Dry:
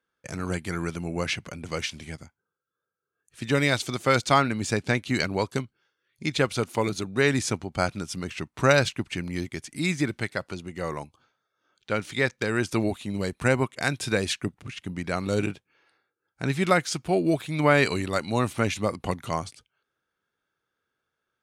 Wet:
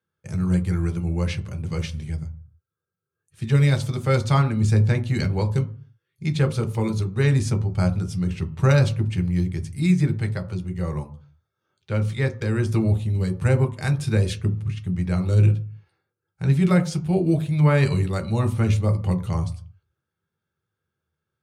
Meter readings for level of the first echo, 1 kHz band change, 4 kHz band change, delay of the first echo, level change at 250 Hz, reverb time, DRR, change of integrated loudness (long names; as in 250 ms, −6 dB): no echo audible, −4.5 dB, −5.0 dB, no echo audible, +4.5 dB, 0.45 s, 3.5 dB, +4.0 dB